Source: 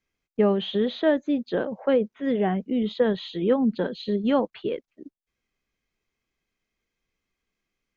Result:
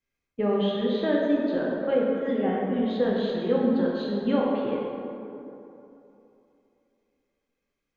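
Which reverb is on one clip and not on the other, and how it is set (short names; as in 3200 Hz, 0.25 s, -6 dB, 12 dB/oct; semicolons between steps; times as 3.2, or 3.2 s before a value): plate-style reverb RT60 3 s, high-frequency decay 0.45×, DRR -4 dB; gain -6.5 dB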